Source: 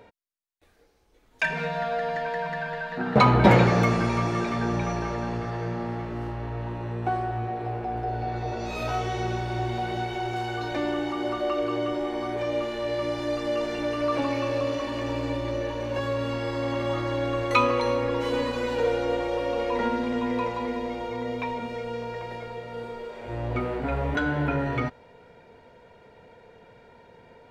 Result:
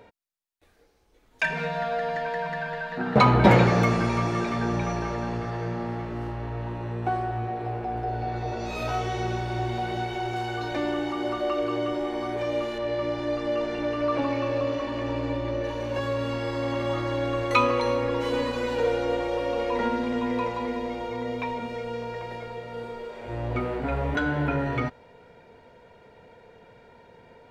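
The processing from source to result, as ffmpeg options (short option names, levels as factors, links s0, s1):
-filter_complex "[0:a]asettb=1/sr,asplit=3[s0][s1][s2];[s0]atrim=end=12.784[s3];[s1]atrim=start=12.78:end=15.64,asetpts=PTS-STARTPTS,afade=t=in:d=0.004:c=qsin,afade=t=out:st=2.856:d=0.004:c=qsin,aemphasis=mode=reproduction:type=50fm[s4];[s2]atrim=start=15.636[s5];[s3][s4]acrossfade=d=0.004:c1=hsin:c2=qsin[s6];[s6][s5]acrossfade=d=0.004:c1=qsin:c2=hsin"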